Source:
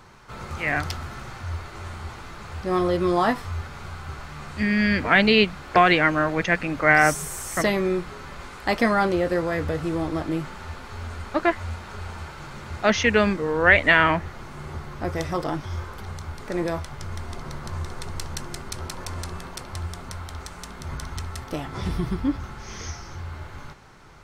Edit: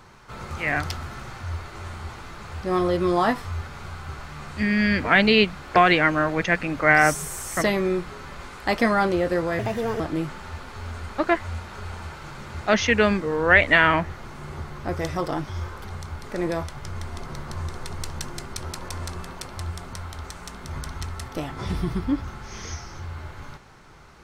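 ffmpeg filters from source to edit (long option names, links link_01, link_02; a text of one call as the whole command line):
ffmpeg -i in.wav -filter_complex "[0:a]asplit=3[link_01][link_02][link_03];[link_01]atrim=end=9.594[link_04];[link_02]atrim=start=9.59:end=10.16,asetpts=PTS-STARTPTS,asetrate=61299,aresample=44100,atrim=end_sample=18084,asetpts=PTS-STARTPTS[link_05];[link_03]atrim=start=10.156[link_06];[link_04][link_05]acrossfade=duration=0.004:curve1=hsin:curve2=hsin[link_07];[link_07][link_06]acrossfade=duration=0.004:curve1=hsin:curve2=hsin" out.wav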